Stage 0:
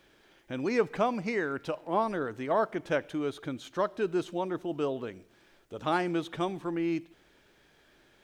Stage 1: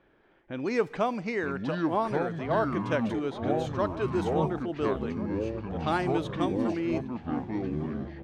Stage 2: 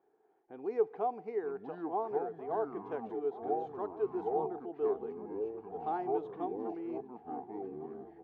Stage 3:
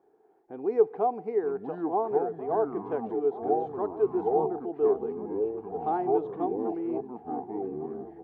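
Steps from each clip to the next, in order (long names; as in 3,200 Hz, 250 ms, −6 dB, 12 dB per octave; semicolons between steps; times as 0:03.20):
delay with pitch and tempo change per echo 722 ms, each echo −6 semitones, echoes 3; low-pass that shuts in the quiet parts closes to 1,600 Hz, open at −23 dBFS; slap from a distant wall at 240 metres, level −15 dB
pair of resonant band-passes 570 Hz, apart 0.79 octaves
tilt shelving filter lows +5 dB, about 1,400 Hz; level +4 dB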